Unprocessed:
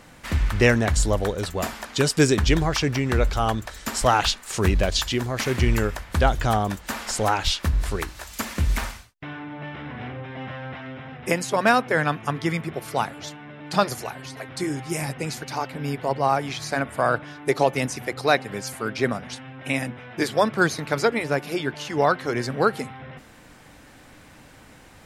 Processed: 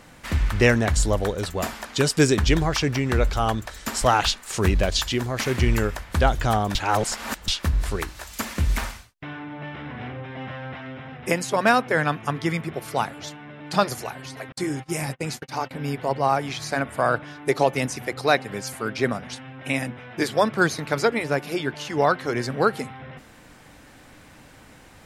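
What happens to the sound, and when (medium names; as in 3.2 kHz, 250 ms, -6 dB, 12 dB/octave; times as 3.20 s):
6.75–7.48 s: reverse
14.52–15.71 s: gate -35 dBFS, range -46 dB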